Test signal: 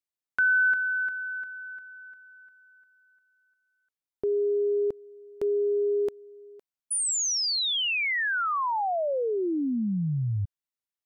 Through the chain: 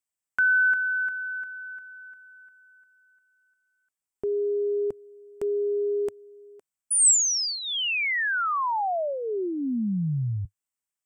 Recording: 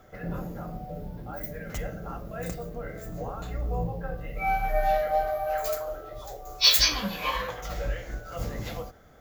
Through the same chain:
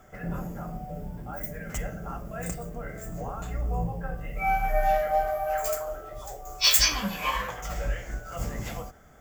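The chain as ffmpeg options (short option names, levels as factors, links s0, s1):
-af "equalizer=f=100:t=o:w=0.33:g=-4,equalizer=f=315:t=o:w=0.33:g=-4,equalizer=f=500:t=o:w=0.33:g=-6,equalizer=f=4000:t=o:w=0.33:g=-10,equalizer=f=8000:t=o:w=0.33:g=10,volume=1.19"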